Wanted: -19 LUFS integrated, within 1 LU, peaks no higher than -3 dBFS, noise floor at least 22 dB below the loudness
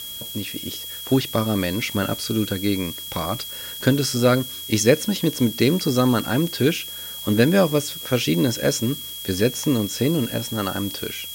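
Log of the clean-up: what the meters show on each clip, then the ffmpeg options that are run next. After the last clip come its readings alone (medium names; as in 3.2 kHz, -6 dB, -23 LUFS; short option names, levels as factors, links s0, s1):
steady tone 3.3 kHz; tone level -34 dBFS; noise floor -34 dBFS; noise floor target -44 dBFS; loudness -22.0 LUFS; peak level -2.5 dBFS; loudness target -19.0 LUFS
-> -af "bandreject=f=3300:w=30"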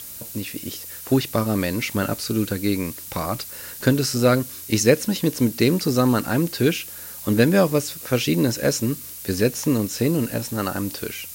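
steady tone not found; noise floor -37 dBFS; noise floor target -44 dBFS
-> -af "afftdn=nr=7:nf=-37"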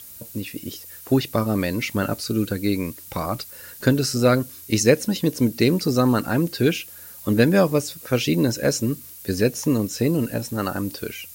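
noise floor -42 dBFS; noise floor target -45 dBFS
-> -af "afftdn=nr=6:nf=-42"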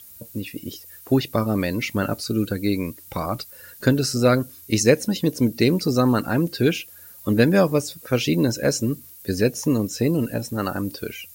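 noise floor -45 dBFS; loudness -22.5 LUFS; peak level -2.5 dBFS; loudness target -19.0 LUFS
-> -af "volume=1.5,alimiter=limit=0.708:level=0:latency=1"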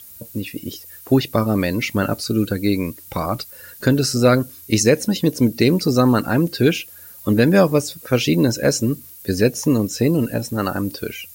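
loudness -19.0 LUFS; peak level -3.0 dBFS; noise floor -41 dBFS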